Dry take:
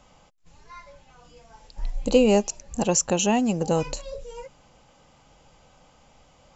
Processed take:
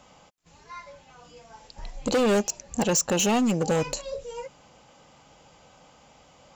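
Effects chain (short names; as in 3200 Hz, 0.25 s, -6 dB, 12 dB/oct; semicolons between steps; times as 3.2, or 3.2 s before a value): HPF 130 Hz 6 dB/oct; overloaded stage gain 22 dB; gain +3 dB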